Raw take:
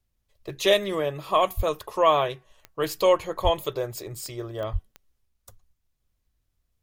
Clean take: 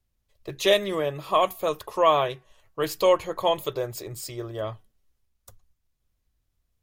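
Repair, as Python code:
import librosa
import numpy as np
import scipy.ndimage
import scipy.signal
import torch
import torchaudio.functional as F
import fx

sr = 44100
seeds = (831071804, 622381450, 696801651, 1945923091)

y = fx.fix_declick_ar(x, sr, threshold=10.0)
y = fx.highpass(y, sr, hz=140.0, slope=24, at=(1.56, 1.68), fade=0.02)
y = fx.highpass(y, sr, hz=140.0, slope=24, at=(3.43, 3.55), fade=0.02)
y = fx.highpass(y, sr, hz=140.0, slope=24, at=(4.72, 4.84), fade=0.02)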